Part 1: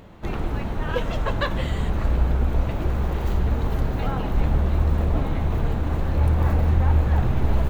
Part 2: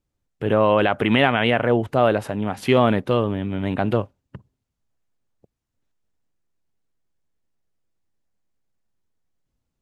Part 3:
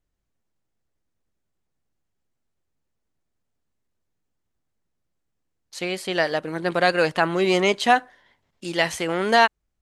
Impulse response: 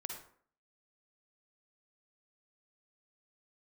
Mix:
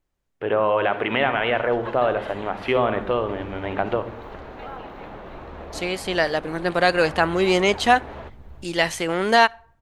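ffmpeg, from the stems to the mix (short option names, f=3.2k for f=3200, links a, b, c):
-filter_complex "[0:a]adelay=600,volume=-4.5dB,asplit=2[a][b];[b]volume=-20dB[c];[1:a]lowpass=f=3.6k:p=1,volume=1dB,asplit=2[d][e];[e]volume=-7.5dB[f];[2:a]volume=0.5dB,asplit=2[g][h];[h]volume=-22.5dB[i];[a][d]amix=inputs=2:normalize=0,highpass=400,lowpass=3.5k,acompressor=threshold=-20dB:ratio=6,volume=0dB[j];[3:a]atrim=start_sample=2205[k];[f][i]amix=inputs=2:normalize=0[l];[l][k]afir=irnorm=-1:irlink=0[m];[c]aecho=0:1:363|726|1089|1452|1815|2178|2541|2904:1|0.53|0.281|0.149|0.0789|0.0418|0.0222|0.0117[n];[g][j][m][n]amix=inputs=4:normalize=0"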